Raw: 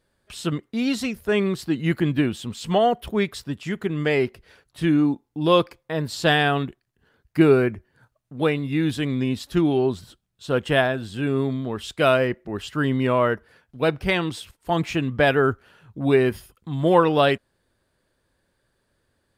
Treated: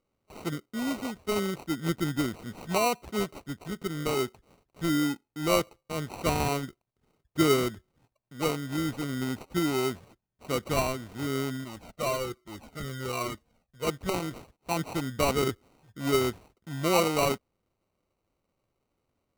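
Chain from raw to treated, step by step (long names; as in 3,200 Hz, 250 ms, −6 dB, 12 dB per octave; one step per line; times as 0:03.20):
decimation without filtering 26×
low-shelf EQ 120 Hz −4 dB
0:11.64–0:13.87: flanger whose copies keep moving one way falling 1.2 Hz
level −7 dB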